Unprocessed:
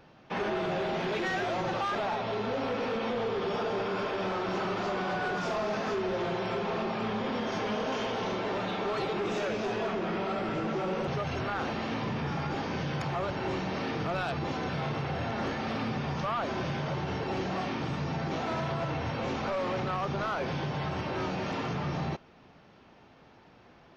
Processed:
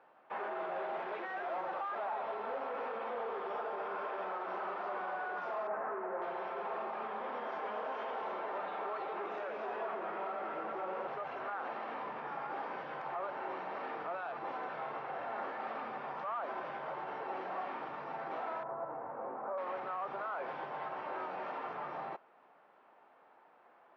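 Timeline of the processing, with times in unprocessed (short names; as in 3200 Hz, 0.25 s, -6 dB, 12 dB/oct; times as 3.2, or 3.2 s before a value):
5.67–6.22 LPF 1900 Hz 24 dB/oct
18.63–19.58 Bessel low-pass 980 Hz, order 4
whole clip: HPF 770 Hz 12 dB/oct; limiter -28.5 dBFS; LPF 1200 Hz 12 dB/oct; gain +1 dB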